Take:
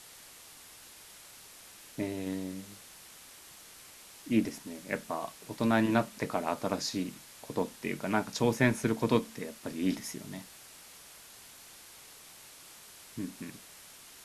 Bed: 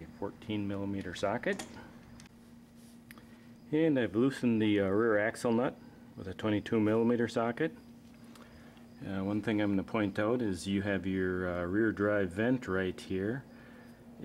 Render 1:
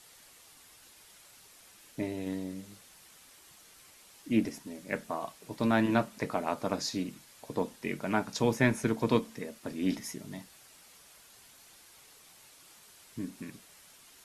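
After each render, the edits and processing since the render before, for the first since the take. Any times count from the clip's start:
broadband denoise 6 dB, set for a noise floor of −53 dBFS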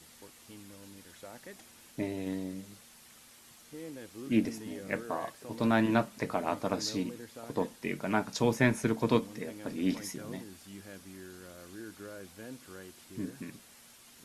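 mix in bed −16 dB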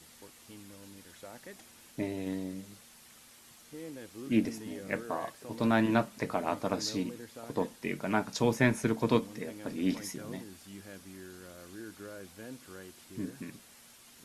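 no processing that can be heard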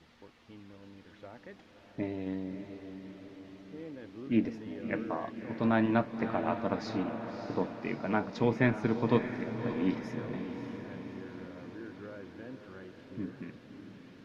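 high-frequency loss of the air 260 metres
feedback delay with all-pass diffusion 602 ms, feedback 60%, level −9 dB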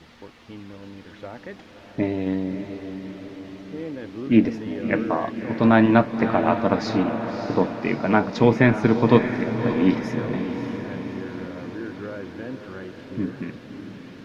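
level +11.5 dB
brickwall limiter −2 dBFS, peak gain reduction 2 dB

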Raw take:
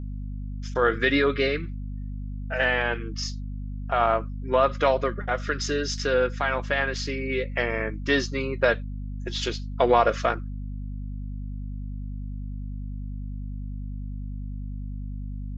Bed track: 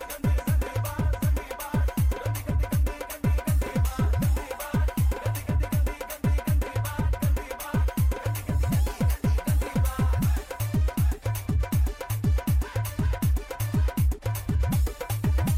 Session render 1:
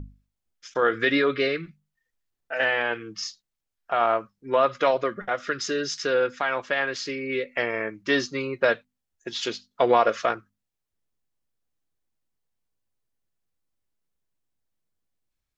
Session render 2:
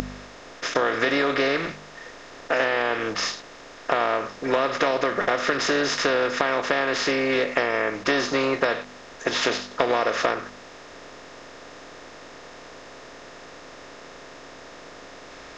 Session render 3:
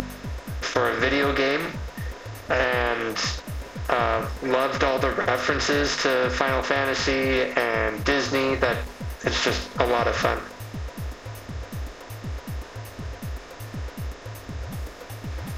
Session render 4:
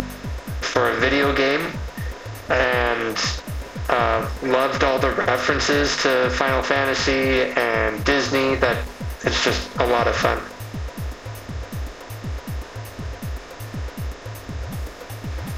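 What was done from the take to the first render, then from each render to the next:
mains-hum notches 50/100/150/200/250 Hz
compressor on every frequency bin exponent 0.4; downward compressor, threshold −18 dBFS, peak gain reduction 8 dB
mix in bed track −9.5 dB
level +3.5 dB; brickwall limiter −2 dBFS, peak gain reduction 2.5 dB

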